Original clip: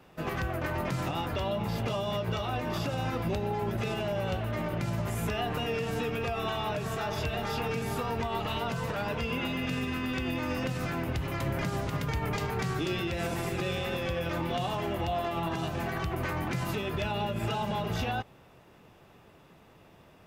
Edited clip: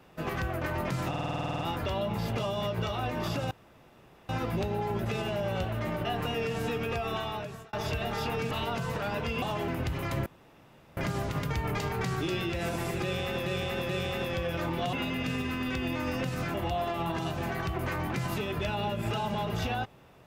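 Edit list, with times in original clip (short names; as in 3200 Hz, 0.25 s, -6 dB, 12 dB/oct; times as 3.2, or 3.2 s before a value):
1.09 stutter 0.05 s, 11 plays
3.01 insert room tone 0.78 s
4.77–5.37 cut
6.25–7.05 fade out equal-power
7.83–8.45 cut
9.36–10.97 swap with 14.65–14.91
11.55 insert room tone 0.71 s
13.61–14.04 loop, 3 plays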